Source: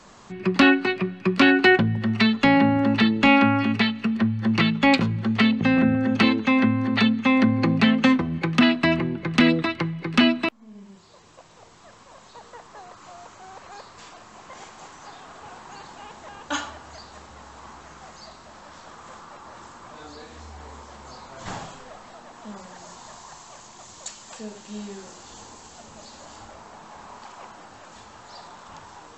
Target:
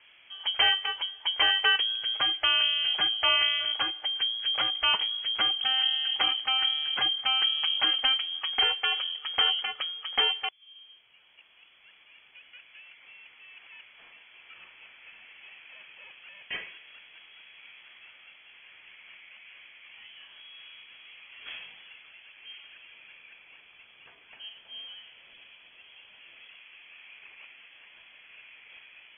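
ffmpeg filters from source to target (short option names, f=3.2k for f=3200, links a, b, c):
-filter_complex "[0:a]lowpass=f=2.9k:t=q:w=0.5098,lowpass=f=2.9k:t=q:w=0.6013,lowpass=f=2.9k:t=q:w=0.9,lowpass=f=2.9k:t=q:w=2.563,afreqshift=-3400,asettb=1/sr,asplit=3[a][b][c];[a]atrim=end=3.284[d];[b]atrim=start=3.28:end=3.76,asetpts=PTS-STARTPTS,afade=t=in:d=0.004:c=qsin,afade=t=out:st=0.476:d=0.004:c=qsin,bandreject=f=890:w=13[e];[c]atrim=start=3.756[f];[d][e]acrossfade=d=0.004:c1=hsin:c2=qsin[g];[g][f]acrossfade=d=0.004:c1=qsin:c2=hsin,volume=-7.5dB"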